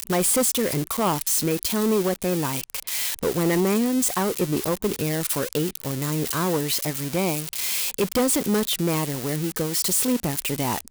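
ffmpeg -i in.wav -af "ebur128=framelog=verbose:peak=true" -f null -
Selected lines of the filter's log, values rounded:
Integrated loudness:
  I:         -23.1 LUFS
  Threshold: -33.1 LUFS
Loudness range:
  LRA:         1.9 LU
  Threshold: -43.4 LUFS
  LRA low:   -24.5 LUFS
  LRA high:  -22.7 LUFS
True peak:
  Peak:      -13.2 dBFS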